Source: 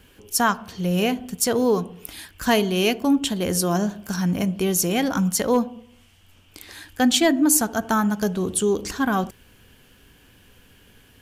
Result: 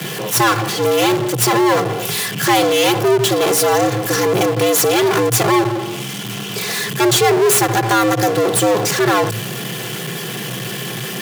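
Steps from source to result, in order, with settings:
lower of the sound and its delayed copy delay 3.1 ms
power curve on the samples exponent 0.35
frequency shifter +110 Hz
level −1 dB

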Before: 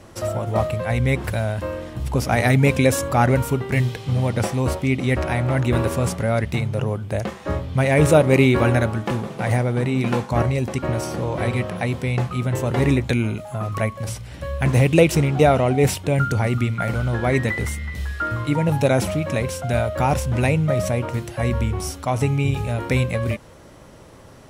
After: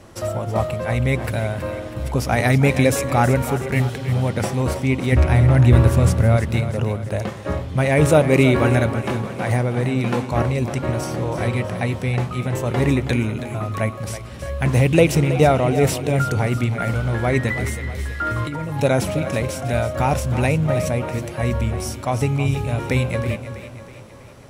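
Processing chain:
0:05.12–0:06.37: parametric band 72 Hz +12.5 dB 2.1 octaves
0:18.23–0:18.80: compressor whose output falls as the input rises −25 dBFS, ratio −1
echo with a time of its own for lows and highs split 350 Hz, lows 243 ms, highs 323 ms, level −11.5 dB

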